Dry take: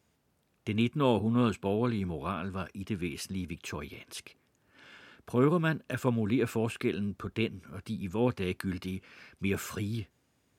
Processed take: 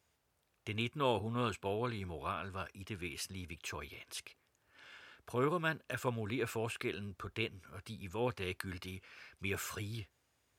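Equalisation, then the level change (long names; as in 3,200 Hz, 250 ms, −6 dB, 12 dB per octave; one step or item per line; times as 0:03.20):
parametric band 210 Hz −12 dB 1.7 octaves
−2.0 dB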